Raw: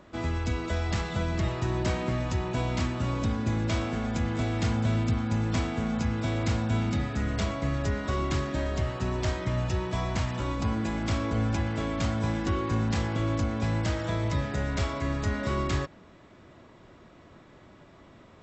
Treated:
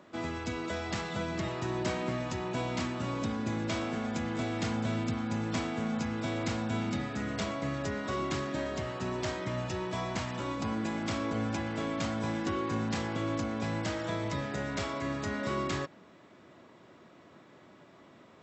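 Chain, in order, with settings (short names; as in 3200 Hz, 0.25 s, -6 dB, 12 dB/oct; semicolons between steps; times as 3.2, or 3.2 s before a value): HPF 160 Hz 12 dB/oct; gain -2 dB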